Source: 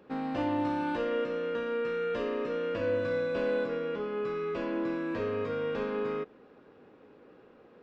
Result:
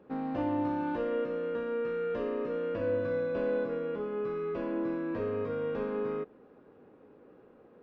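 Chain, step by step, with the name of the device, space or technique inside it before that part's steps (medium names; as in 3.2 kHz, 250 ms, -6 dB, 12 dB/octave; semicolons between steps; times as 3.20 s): through cloth (treble shelf 2.1 kHz -13.5 dB)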